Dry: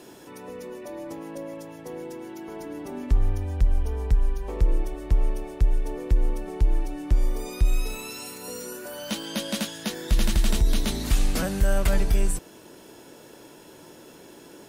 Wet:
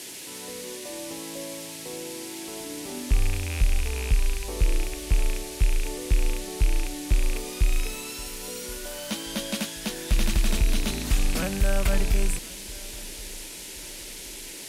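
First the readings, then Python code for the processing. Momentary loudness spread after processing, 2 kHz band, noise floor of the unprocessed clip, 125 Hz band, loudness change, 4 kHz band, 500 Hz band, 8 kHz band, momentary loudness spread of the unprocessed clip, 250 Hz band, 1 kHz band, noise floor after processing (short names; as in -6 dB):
11 LU, +3.0 dB, -48 dBFS, -1.5 dB, -1.0 dB, +2.5 dB, -1.5 dB, +4.5 dB, 22 LU, -1.5 dB, -1.0 dB, -40 dBFS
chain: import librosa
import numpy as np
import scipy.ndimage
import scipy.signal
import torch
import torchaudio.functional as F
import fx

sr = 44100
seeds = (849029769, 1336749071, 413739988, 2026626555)

y = fx.rattle_buzz(x, sr, strikes_db=-27.0, level_db=-21.0)
y = fx.echo_feedback(y, sr, ms=1076, feedback_pct=44, wet_db=-21)
y = fx.dmg_noise_band(y, sr, seeds[0], low_hz=1900.0, high_hz=12000.0, level_db=-39.0)
y = F.gain(torch.from_numpy(y), -1.5).numpy()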